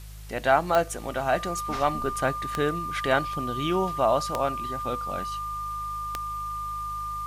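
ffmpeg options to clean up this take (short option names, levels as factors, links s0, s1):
-af "adeclick=t=4,bandreject=f=51.9:t=h:w=4,bandreject=f=103.8:t=h:w=4,bandreject=f=155.7:t=h:w=4,bandreject=f=1200:w=30,afwtdn=0.0028"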